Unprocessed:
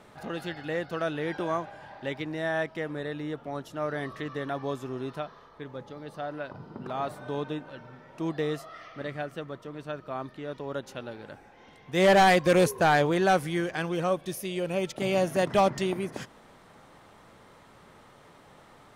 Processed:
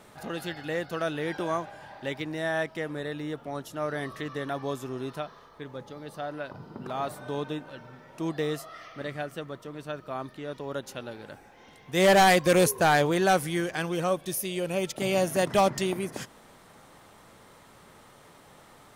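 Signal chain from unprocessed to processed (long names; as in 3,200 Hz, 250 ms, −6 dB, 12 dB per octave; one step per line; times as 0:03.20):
high-shelf EQ 6,500 Hz +11 dB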